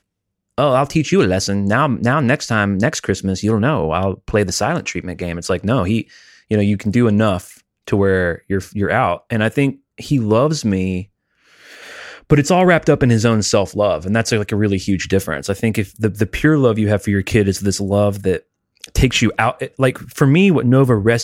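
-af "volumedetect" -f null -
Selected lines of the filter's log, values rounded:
mean_volume: -16.6 dB
max_volume: -1.4 dB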